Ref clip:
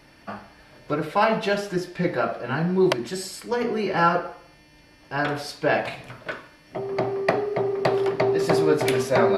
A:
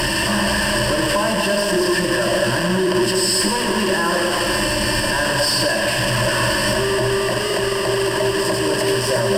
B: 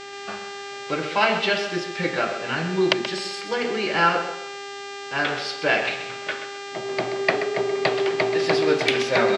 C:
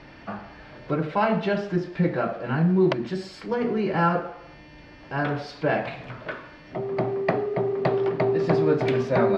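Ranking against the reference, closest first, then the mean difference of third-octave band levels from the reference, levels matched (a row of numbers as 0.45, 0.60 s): C, B, A; 4.0, 7.0, 14.0 dB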